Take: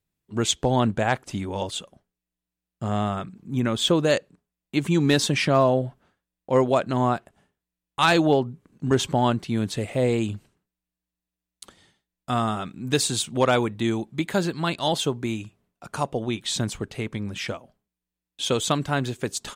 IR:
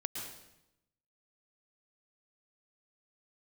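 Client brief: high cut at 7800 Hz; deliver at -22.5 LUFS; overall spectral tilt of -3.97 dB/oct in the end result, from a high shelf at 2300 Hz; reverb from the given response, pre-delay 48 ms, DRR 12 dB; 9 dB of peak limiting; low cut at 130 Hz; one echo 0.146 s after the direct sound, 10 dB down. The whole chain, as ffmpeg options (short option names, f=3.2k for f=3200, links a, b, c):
-filter_complex "[0:a]highpass=130,lowpass=7.8k,highshelf=f=2.3k:g=5,alimiter=limit=-12.5dB:level=0:latency=1,aecho=1:1:146:0.316,asplit=2[a][b];[1:a]atrim=start_sample=2205,adelay=48[c];[b][c]afir=irnorm=-1:irlink=0,volume=-13dB[d];[a][d]amix=inputs=2:normalize=0,volume=3dB"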